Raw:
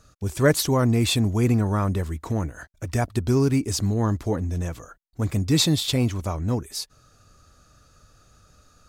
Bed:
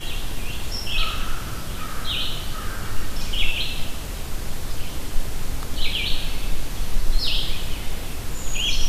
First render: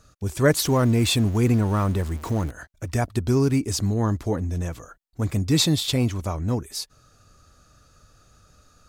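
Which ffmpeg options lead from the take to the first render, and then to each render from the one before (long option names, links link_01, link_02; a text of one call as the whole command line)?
ffmpeg -i in.wav -filter_complex "[0:a]asettb=1/sr,asplit=3[link_01][link_02][link_03];[link_01]atrim=end=0.624[link_04];[link_02]atrim=start=0.62:end=2.51,asetpts=PTS-STARTPTS,afade=type=in:duration=0.004:curve=qsin,afade=type=out:start_time=1.886:duration=0.004:curve=qsin,aeval=exprs='val(0)+0.5*0.02*sgn(val(0))':channel_layout=same[link_05];[link_03]atrim=start=2.506[link_06];[link_04][link_05]acrossfade=duration=0.004:curve1=hsin:curve2=qsin[link_07];[link_07][link_06]acrossfade=duration=0.004:curve1=qsin:curve2=hsin" out.wav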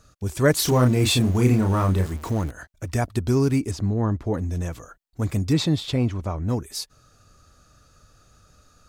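ffmpeg -i in.wav -filter_complex "[0:a]asettb=1/sr,asplit=3[link_01][link_02][link_03];[link_01]atrim=end=0.564[link_04];[link_02]atrim=start=0.56:end=2.14,asetpts=PTS-STARTPTS,afade=type=in:duration=0.004:curve=qsin,afade=type=out:start_time=1.576:duration=0.004:curve=qsin,asplit=2[link_05][link_06];[link_06]adelay=32,volume=-4.5dB[link_07];[link_05][link_07]amix=inputs=2:normalize=0,atrim=end_sample=69678[link_08];[link_03]atrim=start=2.136[link_09];[link_04][link_08]acrossfade=duration=0.004:curve1=hsin:curve2=qsin[link_10];[link_10][link_09]acrossfade=duration=0.004:curve1=qsin:curve2=hsin,asettb=1/sr,asplit=3[link_11][link_12][link_13];[link_11]atrim=end=3.714[link_14];[link_12]atrim=start=3.71:end=4.34,asetpts=PTS-STARTPTS,afade=type=in:duration=0.004:curve=qsin,afade=type=out:start_time=0.626:duration=0.004:curve=qsin,lowpass=frequency=1500:poles=1[link_15];[link_13]atrim=start=4.336[link_16];[link_14][link_15]acrossfade=duration=0.004:curve1=hsin:curve2=qsin[link_17];[link_17][link_16]acrossfade=duration=0.004:curve1=qsin:curve2=hsin,asplit=3[link_18][link_19][link_20];[link_18]afade=type=out:start_time=5.52:duration=0.02[link_21];[link_19]aemphasis=mode=reproduction:type=75kf,afade=type=in:start_time=5.52:duration=0.02,afade=type=out:start_time=6.48:duration=0.02[link_22];[link_20]afade=type=in:start_time=6.48:duration=0.02[link_23];[link_21][link_22][link_23]amix=inputs=3:normalize=0" out.wav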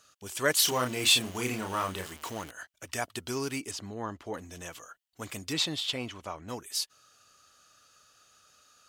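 ffmpeg -i in.wav -af "highpass=frequency=1400:poles=1,equalizer=frequency=3000:width_type=o:width=0.24:gain=8" out.wav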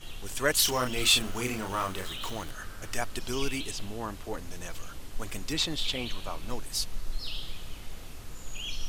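ffmpeg -i in.wav -i bed.wav -filter_complex "[1:a]volume=-14dB[link_01];[0:a][link_01]amix=inputs=2:normalize=0" out.wav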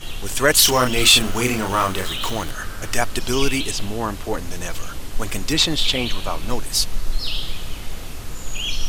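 ffmpeg -i in.wav -af "volume=11.5dB,alimiter=limit=-1dB:level=0:latency=1" out.wav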